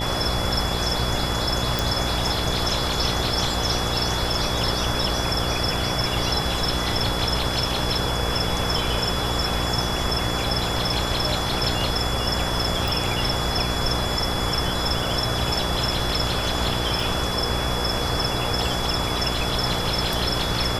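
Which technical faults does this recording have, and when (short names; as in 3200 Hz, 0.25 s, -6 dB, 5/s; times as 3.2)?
buzz 60 Hz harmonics 14 -28 dBFS
tone 3400 Hz -30 dBFS
1.79 pop
12.88 pop
17 gap 2.4 ms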